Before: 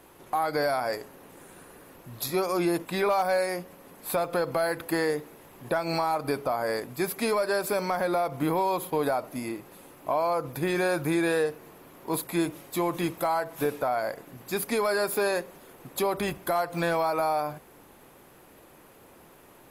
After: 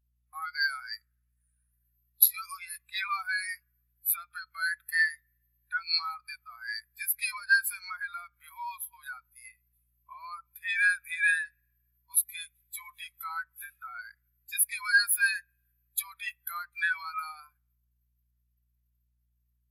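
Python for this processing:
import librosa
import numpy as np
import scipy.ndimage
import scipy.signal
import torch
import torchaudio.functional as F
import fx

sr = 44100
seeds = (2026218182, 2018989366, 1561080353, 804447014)

y = scipy.signal.sosfilt(scipy.signal.butter(4, 1400.0, 'highpass', fs=sr, output='sos'), x)
y = fx.high_shelf(y, sr, hz=3500.0, db=9.0)
y = fx.rev_spring(y, sr, rt60_s=2.0, pass_ms=(51,), chirp_ms=35, drr_db=16.5)
y = fx.add_hum(y, sr, base_hz=60, snr_db=19)
y = fx.spectral_expand(y, sr, expansion=2.5)
y = y * 10.0 ** (5.0 / 20.0)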